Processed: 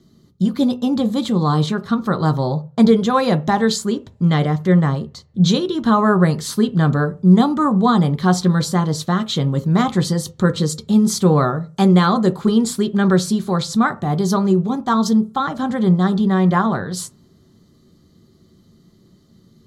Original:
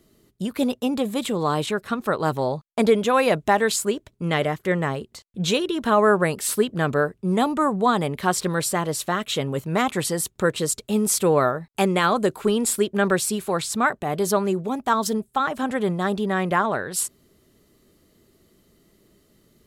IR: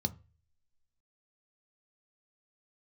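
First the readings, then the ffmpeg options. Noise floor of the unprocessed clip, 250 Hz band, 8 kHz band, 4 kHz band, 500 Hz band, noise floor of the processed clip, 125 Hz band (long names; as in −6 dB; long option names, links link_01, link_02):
−64 dBFS, +9.5 dB, −2.5 dB, +3.0 dB, +1.0 dB, −54 dBFS, +12.0 dB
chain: -filter_complex "[0:a]asplit=2[link_01][link_02];[1:a]atrim=start_sample=2205,lowshelf=frequency=220:gain=-7[link_03];[link_02][link_03]afir=irnorm=-1:irlink=0,volume=1.5dB[link_04];[link_01][link_04]amix=inputs=2:normalize=0,volume=-1dB"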